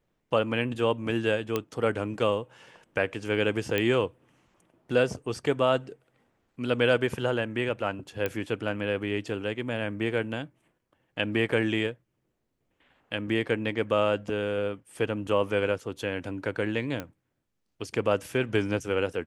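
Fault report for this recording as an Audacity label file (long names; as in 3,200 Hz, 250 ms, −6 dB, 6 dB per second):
1.560000	1.560000	click −13 dBFS
3.780000	3.780000	click −13 dBFS
8.260000	8.260000	click −15 dBFS
17.000000	17.000000	click −19 dBFS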